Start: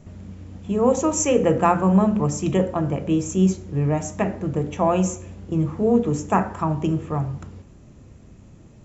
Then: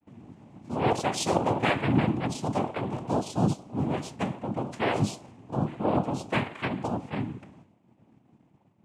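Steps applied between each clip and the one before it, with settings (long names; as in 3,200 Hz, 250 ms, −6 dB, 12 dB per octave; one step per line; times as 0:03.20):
downward expander −40 dBFS
low-pass that shuts in the quiet parts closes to 2,300 Hz, open at −16.5 dBFS
cochlear-implant simulation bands 4
level −7 dB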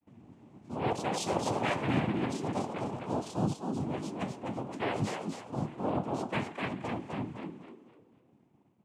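echo with shifted repeats 253 ms, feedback 33%, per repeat +60 Hz, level −5 dB
level −6.5 dB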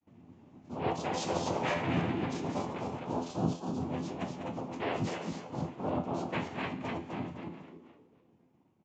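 delay that plays each chunk backwards 144 ms, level −7 dB
tuned comb filter 85 Hz, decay 0.29 s, harmonics all, mix 70%
downsampling to 16,000 Hz
level +4 dB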